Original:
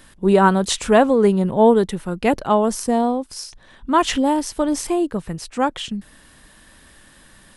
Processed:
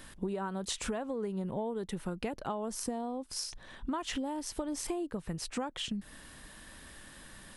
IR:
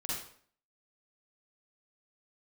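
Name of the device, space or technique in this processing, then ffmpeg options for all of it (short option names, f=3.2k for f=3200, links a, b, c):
serial compression, leveller first: -af "acompressor=threshold=-18dB:ratio=3,acompressor=threshold=-30dB:ratio=10,volume=-2.5dB"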